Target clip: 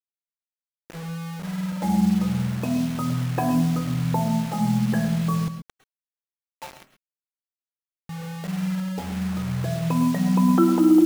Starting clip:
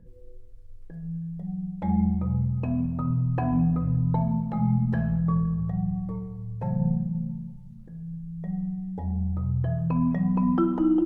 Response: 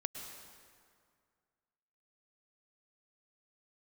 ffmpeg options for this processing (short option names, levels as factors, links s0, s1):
-filter_complex "[0:a]asetnsamples=n=441:p=0,asendcmd='5.48 highpass f 1100;8.09 highpass f 190',highpass=200,acrusher=bits=6:mix=0:aa=0.000001[s0];[1:a]atrim=start_sample=2205,atrim=end_sample=6174[s1];[s0][s1]afir=irnorm=-1:irlink=0,volume=2.24"